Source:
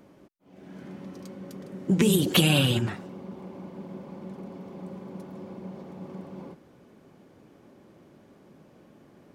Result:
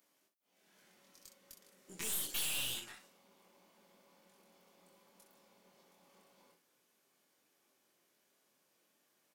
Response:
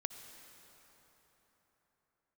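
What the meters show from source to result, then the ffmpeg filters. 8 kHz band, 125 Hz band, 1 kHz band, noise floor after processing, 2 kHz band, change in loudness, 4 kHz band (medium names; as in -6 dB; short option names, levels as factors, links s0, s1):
-5.0 dB, -34.5 dB, -18.5 dB, -77 dBFS, -14.5 dB, -12.0 dB, -13.5 dB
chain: -filter_complex "[0:a]aderivative,asplit=2[s0][s1];[s1]acrusher=bits=3:mix=0:aa=0.000001,volume=0.316[s2];[s0][s2]amix=inputs=2:normalize=0,aecho=1:1:23|63:0.708|0.398,aeval=exprs='(tanh(56.2*val(0)+0.7)-tanh(0.7))/56.2':c=same"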